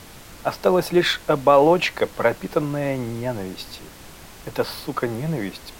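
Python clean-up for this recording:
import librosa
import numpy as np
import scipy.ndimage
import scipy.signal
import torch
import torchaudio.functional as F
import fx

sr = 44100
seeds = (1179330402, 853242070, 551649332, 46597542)

y = fx.noise_reduce(x, sr, print_start_s=3.89, print_end_s=4.39, reduce_db=22.0)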